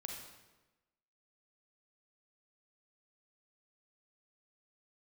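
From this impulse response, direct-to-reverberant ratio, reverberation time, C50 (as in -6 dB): 0.5 dB, 1.1 s, 2.0 dB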